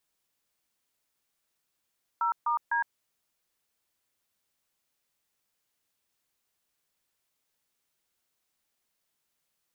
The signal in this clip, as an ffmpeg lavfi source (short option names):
-f lavfi -i "aevalsrc='0.0447*clip(min(mod(t,0.252),0.111-mod(t,0.252))/0.002,0,1)*(eq(floor(t/0.252),0)*(sin(2*PI*941*mod(t,0.252))+sin(2*PI*1336*mod(t,0.252)))+eq(floor(t/0.252),1)*(sin(2*PI*941*mod(t,0.252))+sin(2*PI*1209*mod(t,0.252)))+eq(floor(t/0.252),2)*(sin(2*PI*941*mod(t,0.252))+sin(2*PI*1633*mod(t,0.252))))':d=0.756:s=44100"